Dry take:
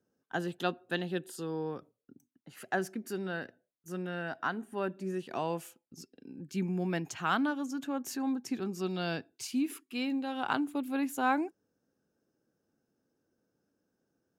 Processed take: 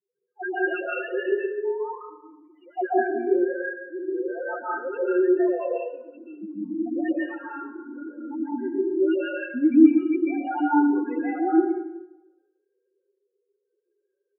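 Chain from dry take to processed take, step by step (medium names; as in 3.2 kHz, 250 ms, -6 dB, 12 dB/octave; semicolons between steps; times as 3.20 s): formants replaced by sine waves; comb 5.6 ms, depth 93%; 7.26–8.19 s: compression 6:1, threshold -45 dBFS, peak gain reduction 17.5 dB; phase dispersion highs, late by 114 ms, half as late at 740 Hz; loudest bins only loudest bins 2; plate-style reverb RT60 0.96 s, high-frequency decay 0.55×, pre-delay 120 ms, DRR -7.5 dB; trim +4 dB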